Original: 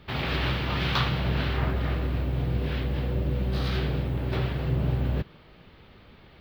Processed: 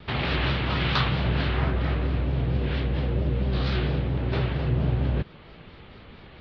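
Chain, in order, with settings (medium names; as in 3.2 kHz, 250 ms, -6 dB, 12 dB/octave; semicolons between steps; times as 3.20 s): low-pass 4.8 kHz 24 dB/octave; in parallel at -1 dB: compression, threshold -35 dBFS, peak gain reduction 14 dB; on the sum: vibrato 4.4 Hz 87 cents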